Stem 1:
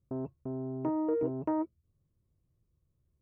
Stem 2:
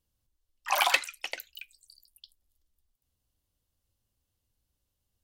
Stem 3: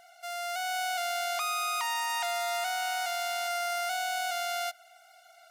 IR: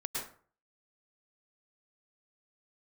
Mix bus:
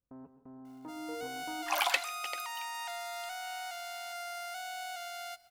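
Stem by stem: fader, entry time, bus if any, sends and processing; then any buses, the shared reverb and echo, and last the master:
−16.5 dB, 0.00 s, send −10.5 dB, spectral envelope flattened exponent 0.6; low-pass filter 1,300 Hz 12 dB per octave; comb filter 4 ms, depth 54%
−5.5 dB, 1.00 s, send −23.5 dB, no processing
−9.5 dB, 0.65 s, send −19 dB, mains-hum notches 50/100/150/200/250/300/350/400/450 Hz; bit reduction 9 bits; expander for the loud parts 1.5 to 1, over −43 dBFS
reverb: on, RT60 0.45 s, pre-delay 97 ms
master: no processing

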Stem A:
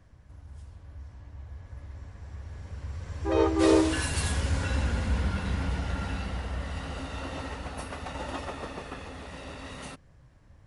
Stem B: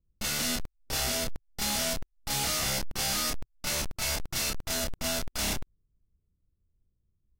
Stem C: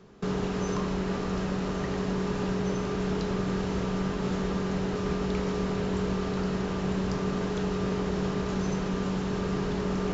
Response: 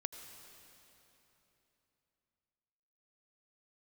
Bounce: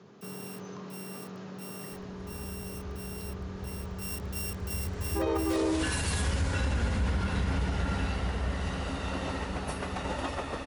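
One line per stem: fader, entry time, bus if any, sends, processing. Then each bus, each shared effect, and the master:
+2.0 dB, 1.90 s, no send, no processing
0:03.84 −15 dB → 0:04.14 −5.5 dB, 0.00 s, no send, samples sorted by size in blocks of 16 samples; first difference
−13.5 dB, 0.00 s, no send, Chebyshev band-pass filter 100–6,800 Hz, order 5; envelope flattener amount 50%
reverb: not used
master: brickwall limiter −20.5 dBFS, peak gain reduction 11 dB

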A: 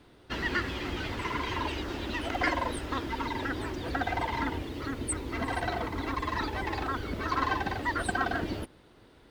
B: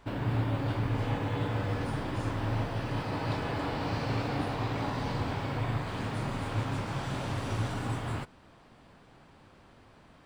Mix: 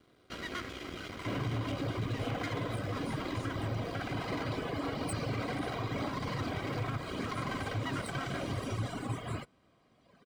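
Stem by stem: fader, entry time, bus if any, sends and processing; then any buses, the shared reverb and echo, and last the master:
−2.5 dB, 0.00 s, no send, half-wave rectification
+2.5 dB, 1.20 s, no send, notch filter 1,400 Hz, Q 9.9; reverb reduction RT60 2 s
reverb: not used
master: notch comb filter 880 Hz; brickwall limiter −26 dBFS, peak gain reduction 7.5 dB

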